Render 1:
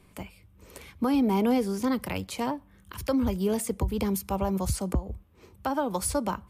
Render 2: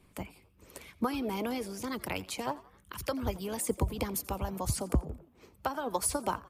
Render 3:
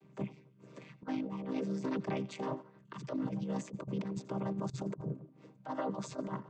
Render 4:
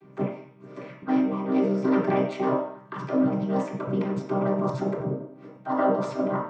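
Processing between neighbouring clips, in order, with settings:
harmonic-percussive split harmonic -12 dB; frequency-shifting echo 86 ms, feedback 46%, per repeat +93 Hz, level -20 dB
chord vocoder minor triad, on C3; negative-ratio compressor -37 dBFS, ratio -0.5; gain +1 dB
reverb RT60 0.55 s, pre-delay 3 ms, DRR -5.5 dB

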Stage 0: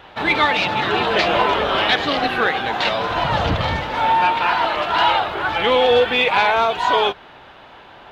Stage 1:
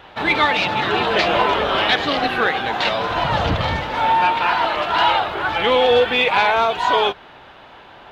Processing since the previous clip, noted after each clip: nothing audible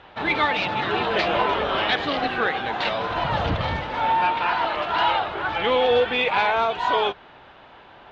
air absorption 92 m; gain -4 dB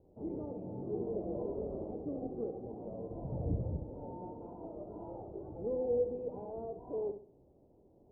inverse Chebyshev low-pass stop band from 1600 Hz, stop band 60 dB; notches 50/100/150/200/250 Hz; flutter echo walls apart 11.6 m, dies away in 0.41 s; gain -8.5 dB

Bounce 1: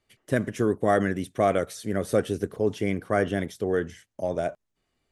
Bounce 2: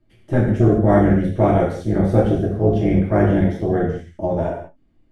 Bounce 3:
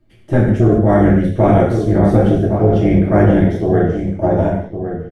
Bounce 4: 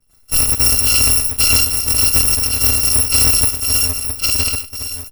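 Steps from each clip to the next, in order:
RIAA curve playback; AM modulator 260 Hz, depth 55%; non-linear reverb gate 0.23 s falling, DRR -5 dB
outdoor echo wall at 190 m, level -8 dB; maximiser +5.5 dB; gain -1 dB
FFT order left unsorted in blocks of 256 samples; in parallel at -7.5 dB: backlash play -22.5 dBFS; on the sum: gain -5 dB

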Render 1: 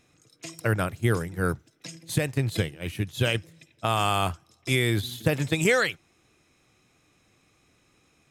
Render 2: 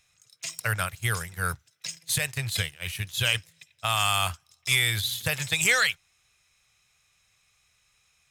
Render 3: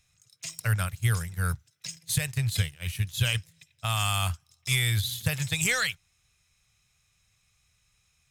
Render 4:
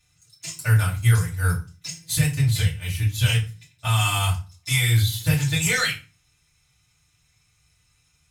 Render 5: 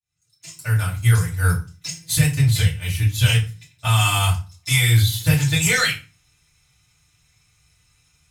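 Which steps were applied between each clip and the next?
passive tone stack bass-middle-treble 10-0-10; sample leveller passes 1; gain +4.5 dB
tone controls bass +11 dB, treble +3 dB; gain -5 dB
FDN reverb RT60 0.33 s, low-frequency decay 1.4×, high-frequency decay 0.8×, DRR -7.5 dB; gain -3.5 dB
opening faded in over 1.35 s; gain +3.5 dB

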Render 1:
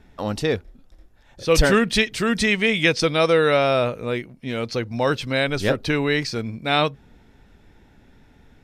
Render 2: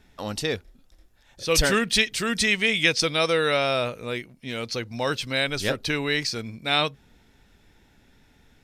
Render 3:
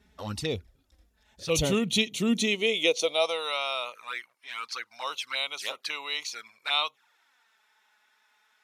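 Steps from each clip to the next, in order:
high shelf 2200 Hz +10.5 dB; gain -6.5 dB
envelope flanger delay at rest 5.1 ms, full sweep at -23 dBFS; high-pass sweep 66 Hz -> 1100 Hz, 1.36–3.56; gain -2.5 dB

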